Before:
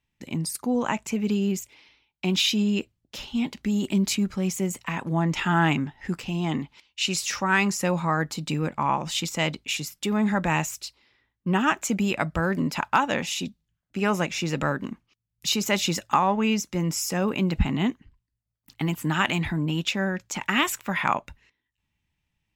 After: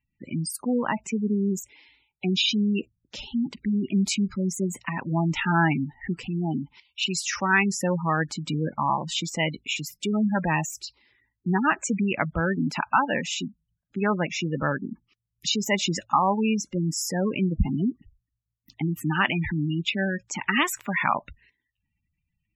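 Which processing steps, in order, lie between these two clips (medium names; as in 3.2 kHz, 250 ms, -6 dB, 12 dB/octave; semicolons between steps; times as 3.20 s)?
spectral gate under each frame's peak -15 dB strong; peaking EQ 1.8 kHz +3.5 dB 0.48 oct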